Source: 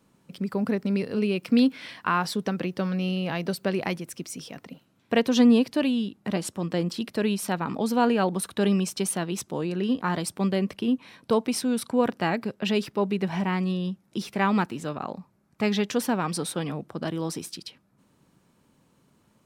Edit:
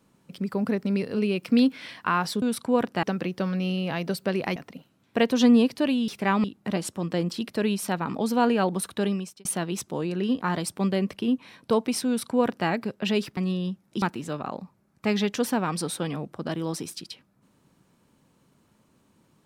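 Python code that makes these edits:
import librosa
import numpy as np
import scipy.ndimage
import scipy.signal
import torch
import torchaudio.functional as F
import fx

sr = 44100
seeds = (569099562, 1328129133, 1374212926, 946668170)

y = fx.edit(x, sr, fx.cut(start_s=3.95, length_s=0.57),
    fx.fade_out_span(start_s=8.5, length_s=0.55),
    fx.duplicate(start_s=11.67, length_s=0.61, to_s=2.42),
    fx.cut(start_s=12.97, length_s=0.6),
    fx.move(start_s=14.22, length_s=0.36, to_s=6.04), tone=tone)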